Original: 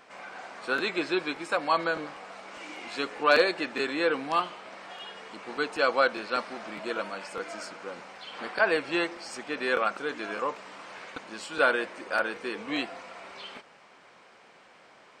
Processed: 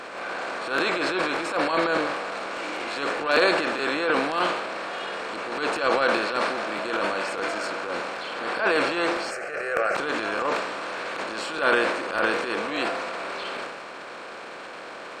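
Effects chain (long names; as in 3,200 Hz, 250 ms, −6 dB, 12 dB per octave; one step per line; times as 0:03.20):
compressor on every frequency bin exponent 0.6
0:09.31–0:09.95: phaser with its sweep stopped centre 970 Hz, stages 6
transient designer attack −12 dB, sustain +8 dB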